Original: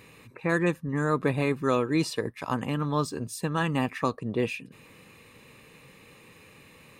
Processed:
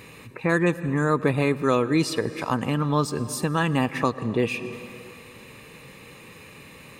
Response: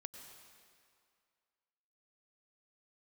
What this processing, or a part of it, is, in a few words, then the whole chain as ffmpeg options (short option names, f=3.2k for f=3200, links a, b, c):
ducked reverb: -filter_complex "[0:a]asplit=3[a][b][c];[1:a]atrim=start_sample=2205[d];[b][d]afir=irnorm=-1:irlink=0[e];[c]apad=whole_len=308422[f];[e][f]sidechaincompress=threshold=-31dB:ratio=8:attack=6.8:release=242,volume=3.5dB[g];[a][g]amix=inputs=2:normalize=0,volume=2dB"